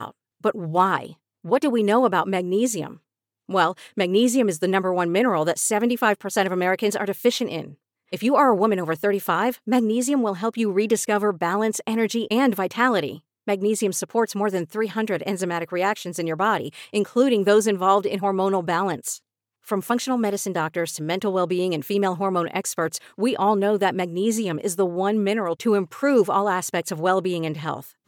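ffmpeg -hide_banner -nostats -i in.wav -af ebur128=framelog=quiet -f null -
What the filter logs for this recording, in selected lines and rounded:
Integrated loudness:
  I:         -22.4 LUFS
  Threshold: -32.6 LUFS
Loudness range:
  LRA:         3.0 LU
  Threshold: -42.6 LUFS
  LRA low:   -24.4 LUFS
  LRA high:  -21.4 LUFS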